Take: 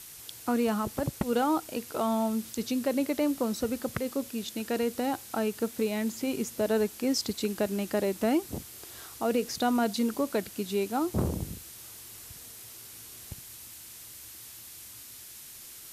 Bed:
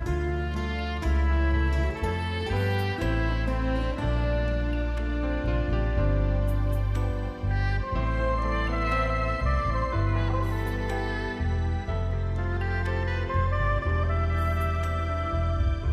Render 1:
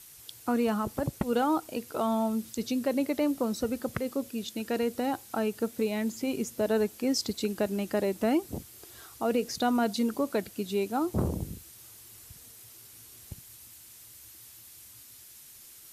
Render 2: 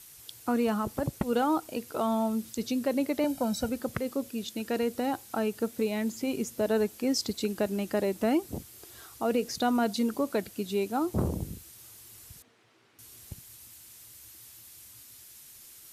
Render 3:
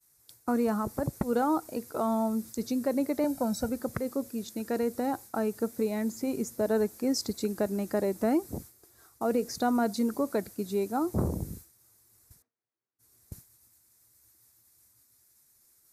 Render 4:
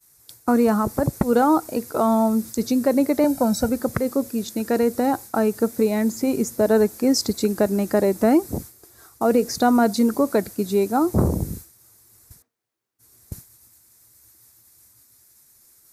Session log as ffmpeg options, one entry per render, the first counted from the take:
-af "afftdn=nr=6:nf=-47"
-filter_complex "[0:a]asettb=1/sr,asplit=3[a][b][c];[a]atrim=end=3.244[d];[b]atrim=start=3.24:end=3.69,asetpts=PTS-STARTPTS,afade=t=in:d=0.004:c=qsin,afade=t=out:st=0.446:d=0.004:c=qsin,aecho=1:1:1.3:0.85,atrim=end_sample=19845[e];[c]atrim=start=3.686[f];[d][e]acrossfade=d=0.004:c1=hsin:c2=qsin[g];[g][f]acrossfade=d=0.004:c1=qsin:c2=hsin,asettb=1/sr,asplit=3[h][i][j];[h]atrim=end=12.424[k];[i]atrim=start=12.42:end=12.99,asetpts=PTS-STARTPTS,afade=t=in:d=0.004:c=qsin,afade=t=out:st=0.566:d=0.004:c=qsin,highpass=210,lowpass=2.2k[l];[j]atrim=start=12.986[m];[k][l]acrossfade=d=0.004:c1=hsin:c2=qsin[n];[n][m]acrossfade=d=0.004:c1=qsin:c2=hsin"
-af "agate=range=-33dB:threshold=-41dB:ratio=3:detection=peak,equalizer=f=3k:t=o:w=0.62:g=-15"
-af "volume=9.5dB"

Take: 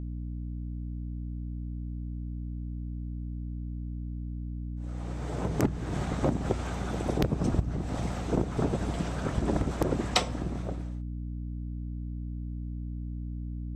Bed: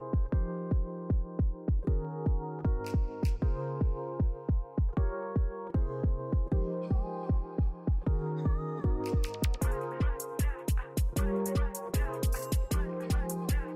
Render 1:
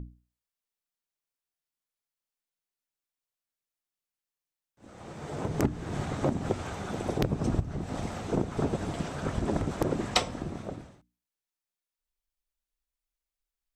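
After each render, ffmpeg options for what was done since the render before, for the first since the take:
-af "bandreject=f=60:t=h:w=6,bandreject=f=120:t=h:w=6,bandreject=f=180:t=h:w=6,bandreject=f=240:t=h:w=6,bandreject=f=300:t=h:w=6"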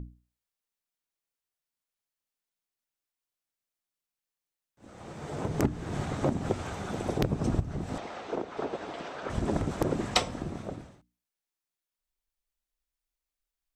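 -filter_complex "[0:a]asettb=1/sr,asplit=3[a][b][c];[a]atrim=end=7.984[d];[b]atrim=start=7.98:end=9.3,asetpts=PTS-STARTPTS,afade=t=in:d=0.004:c=qsin,afade=t=out:st=1.316:d=0.004:c=qsin,acrossover=split=320 5300:gain=0.0891 1 0.112[e][f][g];[e][f][g]amix=inputs=3:normalize=0[h];[c]atrim=start=9.296[i];[d][h]acrossfade=d=0.004:c1=hsin:c2=qsin[j];[j][i]acrossfade=d=0.004:c1=qsin:c2=hsin"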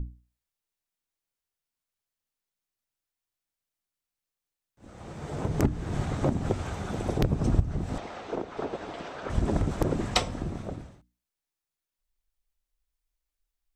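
-af "lowshelf=f=87:g=11"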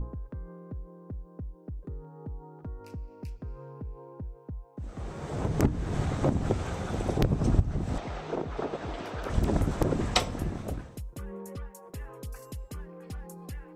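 -filter_complex "[1:a]volume=-10dB[a];[0:a][a]amix=inputs=2:normalize=0"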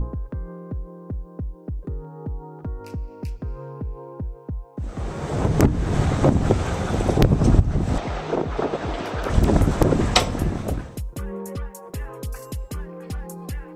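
-af "volume=9dB,alimiter=limit=-3dB:level=0:latency=1"

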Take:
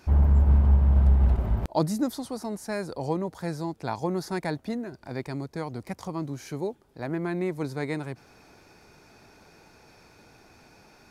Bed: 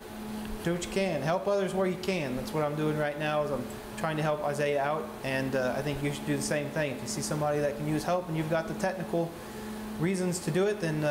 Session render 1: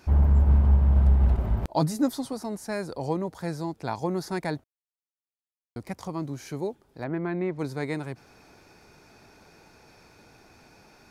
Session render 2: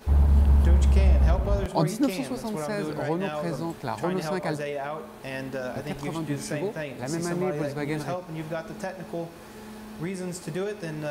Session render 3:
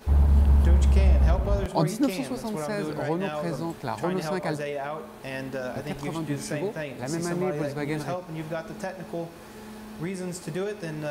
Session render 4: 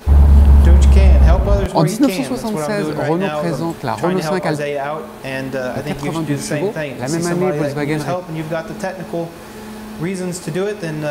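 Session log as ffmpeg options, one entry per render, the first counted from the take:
-filter_complex "[0:a]asettb=1/sr,asplit=3[a][b][c];[a]atrim=end=1.764[d];[b]atrim=start=1.76:end=2.33,asetpts=PTS-STARTPTS,afade=t=in:d=0.004:c=qsin,afade=t=out:st=0.566:d=0.004:c=qsin,aecho=1:1:7.3:0.56,atrim=end_sample=25137[e];[c]atrim=start=2.326[f];[d][e]acrossfade=d=0.004:c1=hsin:c2=qsin[g];[g][f]acrossfade=d=0.004:c1=qsin:c2=hsin,asettb=1/sr,asplit=3[h][i][j];[h]atrim=end=7.044[k];[i]atrim=start=7.04:end=7.59,asetpts=PTS-STARTPTS,afade=t=in:d=0.004:c=qsin,afade=t=out:st=0.546:d=0.004:c=qsin,lowpass=2.9k[l];[j]atrim=start=7.586[m];[k][l]acrossfade=d=0.004:c1=hsin:c2=qsin[n];[n][m]acrossfade=d=0.004:c1=qsin:c2=hsin,asplit=3[o][p][q];[o]atrim=end=4.64,asetpts=PTS-STARTPTS,afade=t=out:st=4.636:d=0.004:c=hsin[r];[p]atrim=start=4.64:end=5.76,asetpts=PTS-STARTPTS,volume=0[s];[q]atrim=start=5.76,asetpts=PTS-STARTPTS,afade=t=in:d=0.004:c=hsin[t];[r][s][t]concat=n=3:v=0:a=1"
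-filter_complex "[1:a]volume=-3.5dB[a];[0:a][a]amix=inputs=2:normalize=0"
-af anull
-af "volume=10.5dB,alimiter=limit=-1dB:level=0:latency=1"

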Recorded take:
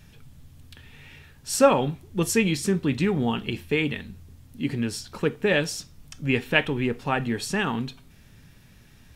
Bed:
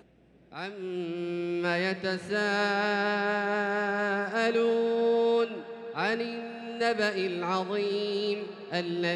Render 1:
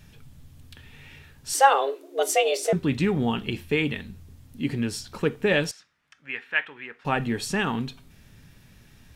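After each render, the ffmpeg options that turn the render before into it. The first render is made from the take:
-filter_complex "[0:a]asettb=1/sr,asplit=3[a][b][c];[a]atrim=end=1.544[d];[b]atrim=start=1.54:end=2.73,asetpts=PTS-STARTPTS,afade=t=in:d=0.004:c=qsin,afade=t=out:st=1.186:d=0.004:c=qsin,afreqshift=270[e];[c]atrim=start=2.726[f];[d][e]acrossfade=d=0.004:c1=hsin:c2=qsin[g];[g][f]acrossfade=d=0.004:c1=qsin:c2=hsin,asettb=1/sr,asplit=3[h][i][j];[h]atrim=end=5.714[k];[i]atrim=start=5.71:end=7.05,asetpts=PTS-STARTPTS,afade=t=in:d=0.004:c=qsin,afade=t=out:st=1.336:d=0.004:c=qsin,bandpass=f=1.7k:t=q:w=2.1[l];[j]atrim=start=7.046[m];[k][l]acrossfade=d=0.004:c1=hsin:c2=qsin[n];[n][m]acrossfade=d=0.004:c1=qsin:c2=hsin"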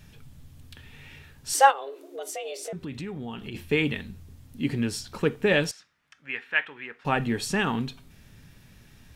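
-filter_complex "[0:a]asplit=3[a][b][c];[a]afade=t=out:st=1.7:d=0.02[d];[b]acompressor=threshold=-36dB:ratio=3:attack=3.2:release=140:knee=1:detection=peak,afade=t=in:st=1.7:d=0.02,afade=t=out:st=3.54:d=0.02[e];[c]afade=t=in:st=3.54:d=0.02[f];[d][e][f]amix=inputs=3:normalize=0"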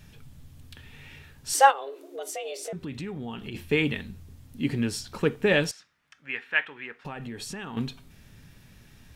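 -filter_complex "[0:a]asettb=1/sr,asplit=3[a][b][c];[a]atrim=end=7.004[d];[b]atrim=start=7:end=7.77,asetpts=PTS-STARTPTS,afade=t=in:d=0.004:c=qsin,afade=t=out:st=0.766:d=0.004:c=qsin,acompressor=threshold=-34dB:ratio=6:attack=3.2:release=140:knee=1:detection=peak[e];[c]atrim=start=7.766[f];[d][e]acrossfade=d=0.004:c1=hsin:c2=qsin[g];[g][f]acrossfade=d=0.004:c1=qsin:c2=hsin"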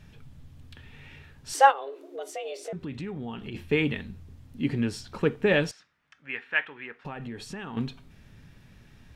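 -af "lowpass=f=3.2k:p=1"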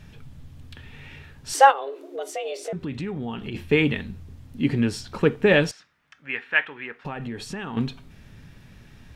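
-af "volume=5dB,alimiter=limit=-2dB:level=0:latency=1"

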